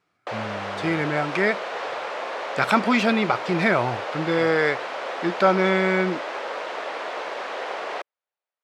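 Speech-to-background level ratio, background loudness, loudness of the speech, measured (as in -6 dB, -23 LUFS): 7.5 dB, -30.5 LUFS, -23.0 LUFS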